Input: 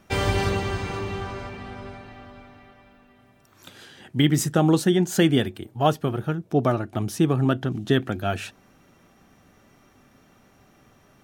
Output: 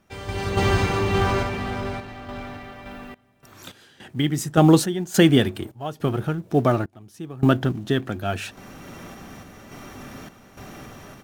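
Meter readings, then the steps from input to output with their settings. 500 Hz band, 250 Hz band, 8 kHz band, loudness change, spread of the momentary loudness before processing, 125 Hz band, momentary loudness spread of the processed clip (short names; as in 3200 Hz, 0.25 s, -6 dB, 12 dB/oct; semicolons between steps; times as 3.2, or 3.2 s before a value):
+1.5 dB, +2.0 dB, +0.5 dB, +1.5 dB, 16 LU, +1.5 dB, 24 LU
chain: G.711 law mismatch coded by mu; AGC gain up to 11 dB; random-step tremolo, depth 95%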